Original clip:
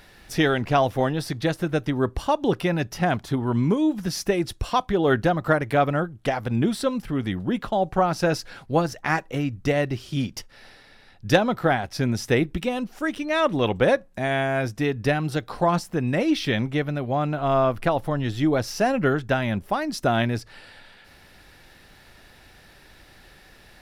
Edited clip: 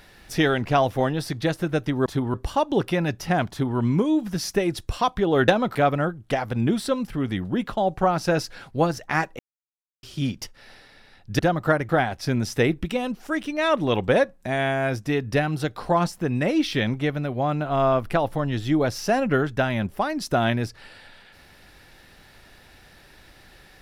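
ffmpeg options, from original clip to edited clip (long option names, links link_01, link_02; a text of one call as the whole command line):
ffmpeg -i in.wav -filter_complex "[0:a]asplit=9[link_01][link_02][link_03][link_04][link_05][link_06][link_07][link_08][link_09];[link_01]atrim=end=2.062[link_10];[link_02]atrim=start=3.218:end=3.502[link_11];[link_03]atrim=start=2.058:end=5.202[link_12];[link_04]atrim=start=11.338:end=11.612[link_13];[link_05]atrim=start=5.698:end=9.34,asetpts=PTS-STARTPTS,afade=type=out:start_time=3.638:duration=0.004:curve=hsin[link_14];[link_06]atrim=start=9.34:end=9.98,asetpts=PTS-STARTPTS,volume=0[link_15];[link_07]atrim=start=9.98:end=11.342,asetpts=PTS-STARTPTS,afade=type=in:duration=0.004:curve=hsin[link_16];[link_08]atrim=start=5.198:end=5.702[link_17];[link_09]atrim=start=11.608[link_18];[link_10][link_11]acrossfade=duration=0.004:curve1=hsin:curve2=hsin[link_19];[link_19][link_12]acrossfade=duration=0.004:curve1=hsin:curve2=hsin[link_20];[link_20][link_13]acrossfade=duration=0.004:curve1=hsin:curve2=hsin[link_21];[link_14][link_15][link_16]concat=n=3:v=0:a=1[link_22];[link_21][link_22]acrossfade=duration=0.004:curve1=hsin:curve2=hsin[link_23];[link_23][link_17]acrossfade=duration=0.004:curve1=hsin:curve2=hsin[link_24];[link_24][link_18]acrossfade=duration=0.004:curve1=hsin:curve2=hsin" out.wav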